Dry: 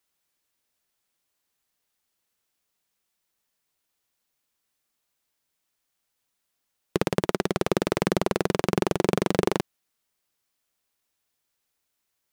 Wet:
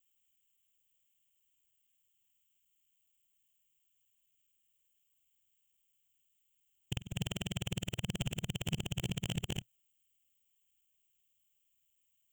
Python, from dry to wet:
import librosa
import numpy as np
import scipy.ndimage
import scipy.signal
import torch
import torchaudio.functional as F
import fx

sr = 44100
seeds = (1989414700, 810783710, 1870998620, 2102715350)

y = fx.local_reverse(x, sr, ms=52.0)
y = fx.curve_eq(y, sr, hz=(120.0, 390.0, 660.0, 1100.0, 2100.0, 3100.0, 4500.0, 7400.0, 11000.0, 16000.0), db=(0, -24, -17, -24, -10, 5, -29, 5, -19, 7))
y = 10.0 ** (-25.5 / 20.0) * np.tanh(y / 10.0 ** (-25.5 / 20.0))